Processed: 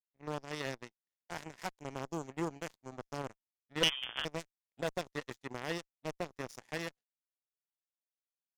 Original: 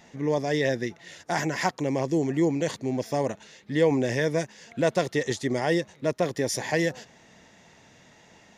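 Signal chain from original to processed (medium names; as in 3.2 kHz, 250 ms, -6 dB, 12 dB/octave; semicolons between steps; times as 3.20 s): power-law waveshaper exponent 3; 3.83–4.25 s: frequency inversion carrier 3.4 kHz; one-sided clip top -26.5 dBFS; trim +1 dB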